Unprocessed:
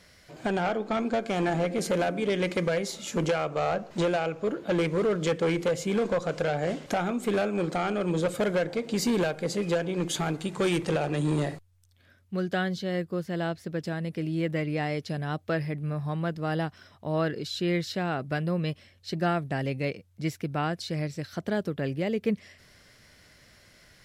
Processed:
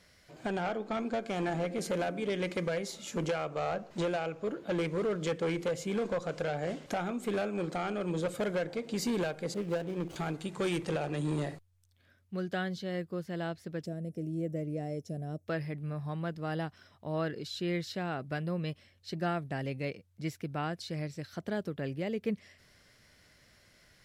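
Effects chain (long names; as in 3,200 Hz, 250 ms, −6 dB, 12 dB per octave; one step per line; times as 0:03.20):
0:09.54–0:10.16: running median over 25 samples
0:13.86–0:15.47: gain on a spectral selection 750–5,200 Hz −16 dB
level −6 dB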